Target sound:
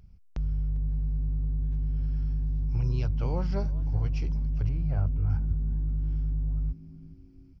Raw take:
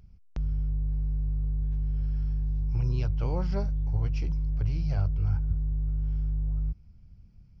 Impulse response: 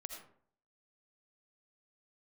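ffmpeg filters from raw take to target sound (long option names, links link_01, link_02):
-filter_complex "[0:a]asettb=1/sr,asplit=3[link_01][link_02][link_03];[link_01]atrim=end=4.694[link_04];[link_02]atrim=start=4.69:end=5.3,asetpts=PTS-STARTPTS,afade=type=in:duration=0.004:curve=qsin,afade=type=out:start_time=0.606:duration=0.004:curve=qsin,lowpass=1800[link_05];[link_03]atrim=start=5.296[link_06];[link_04][link_05]acrossfade=duration=0.004:curve1=hsin:curve2=qsin[link_07];[link_07][link_06]acrossfade=duration=0.004:curve1=qsin:curve2=hsin,asplit=3[link_08][link_09][link_10];[link_09]adelay=399,afreqshift=110,volume=-21dB[link_11];[link_10]adelay=798,afreqshift=220,volume=-31.2dB[link_12];[link_08][link_11][link_12]amix=inputs=3:normalize=0"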